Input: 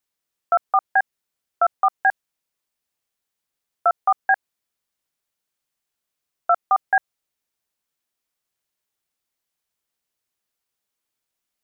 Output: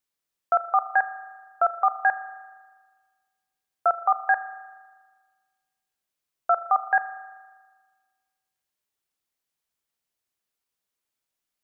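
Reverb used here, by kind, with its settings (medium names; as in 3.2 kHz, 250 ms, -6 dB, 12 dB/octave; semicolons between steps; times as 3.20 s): spring tank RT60 1.5 s, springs 39 ms, chirp 20 ms, DRR 12.5 dB; trim -3 dB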